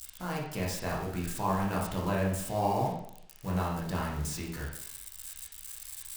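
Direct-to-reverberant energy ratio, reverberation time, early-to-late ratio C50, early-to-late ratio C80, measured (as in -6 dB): -5.0 dB, 0.70 s, 2.5 dB, 7.0 dB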